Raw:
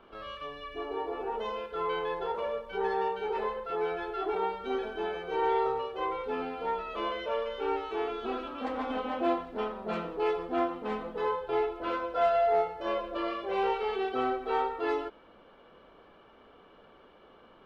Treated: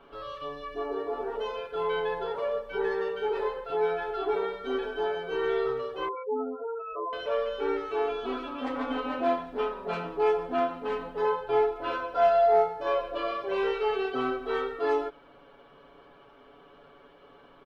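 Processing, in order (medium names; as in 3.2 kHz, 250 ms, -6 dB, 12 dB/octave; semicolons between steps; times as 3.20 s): 6.08–7.13 s: spectral gate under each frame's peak -10 dB strong; comb 7.1 ms, depth 84%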